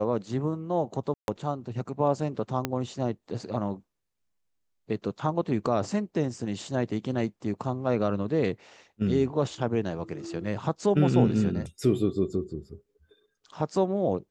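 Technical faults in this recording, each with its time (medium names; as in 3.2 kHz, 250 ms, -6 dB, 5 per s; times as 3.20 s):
1.14–1.28 s: dropout 141 ms
2.65 s: pop -12 dBFS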